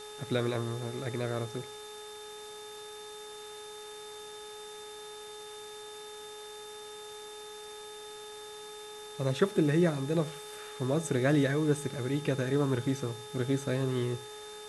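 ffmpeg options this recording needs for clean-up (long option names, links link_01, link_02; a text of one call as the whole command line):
ffmpeg -i in.wav -af "adeclick=threshold=4,bandreject=frequency=422.6:width_type=h:width=4,bandreject=frequency=845.2:width_type=h:width=4,bandreject=frequency=1267.8:width_type=h:width=4,bandreject=frequency=1690.4:width_type=h:width=4,bandreject=frequency=3600:width=30,afwtdn=0.0032" out.wav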